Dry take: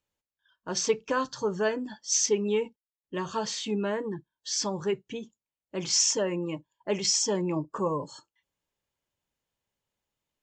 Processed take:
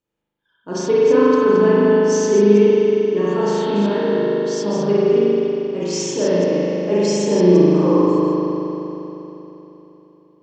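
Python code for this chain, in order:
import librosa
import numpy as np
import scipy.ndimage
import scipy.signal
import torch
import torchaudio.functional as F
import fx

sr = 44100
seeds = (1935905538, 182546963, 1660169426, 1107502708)

y = fx.reverse_delay(x, sr, ms=161, wet_db=-6.0)
y = fx.peak_eq(y, sr, hz=300.0, db=11.5, octaves=2.0)
y = fx.rev_spring(y, sr, rt60_s=3.5, pass_ms=(39,), chirp_ms=55, drr_db=-9.5)
y = F.gain(torch.from_numpy(y), -4.0).numpy()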